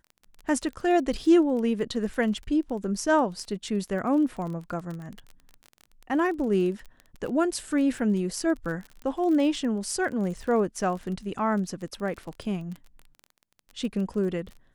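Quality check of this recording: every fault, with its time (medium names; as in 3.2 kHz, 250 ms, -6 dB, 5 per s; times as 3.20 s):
crackle 29 per s -34 dBFS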